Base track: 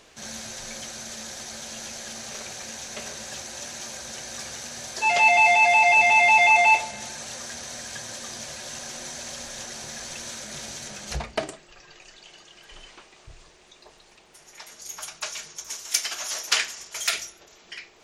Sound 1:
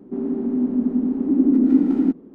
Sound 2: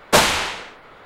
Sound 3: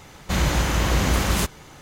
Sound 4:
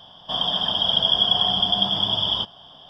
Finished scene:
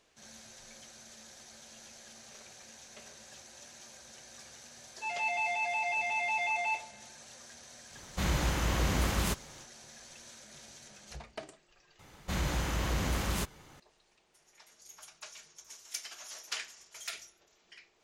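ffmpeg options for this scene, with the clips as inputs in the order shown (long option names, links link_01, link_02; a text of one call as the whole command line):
ffmpeg -i bed.wav -i cue0.wav -i cue1.wav -i cue2.wav -filter_complex "[3:a]asplit=2[link_01][link_02];[0:a]volume=-15.5dB[link_03];[link_02]asoftclip=type=tanh:threshold=-10dB[link_04];[link_03]asplit=2[link_05][link_06];[link_05]atrim=end=11.994[link_07];[link_04]atrim=end=1.81,asetpts=PTS-STARTPTS,volume=-10.5dB[link_08];[link_06]atrim=start=13.796[link_09];[link_01]atrim=end=1.81,asetpts=PTS-STARTPTS,volume=-9dB,afade=type=in:duration=0.1,afade=type=out:start_time=1.71:duration=0.1,adelay=7880[link_10];[link_07][link_08]acrossfade=duration=0.004:curve1=hsin:curve2=hsin[link_11];[link_11][link_09]acrossfade=duration=0.004:curve1=hsin:curve2=hsin[link_12];[link_12][link_10]amix=inputs=2:normalize=0" out.wav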